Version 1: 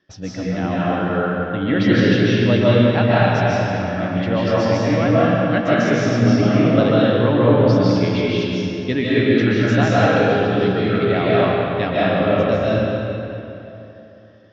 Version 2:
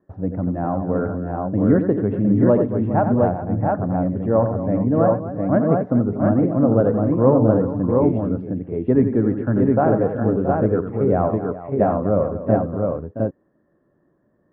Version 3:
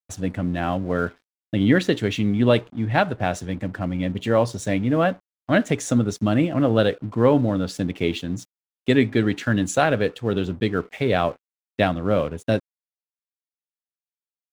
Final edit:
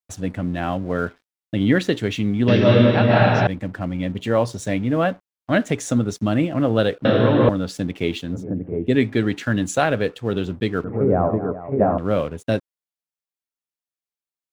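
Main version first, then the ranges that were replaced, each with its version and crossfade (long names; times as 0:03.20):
3
0:02.48–0:03.47: punch in from 1
0:07.05–0:07.49: punch in from 1
0:08.37–0:08.92: punch in from 2, crossfade 0.16 s
0:10.84–0:11.98: punch in from 2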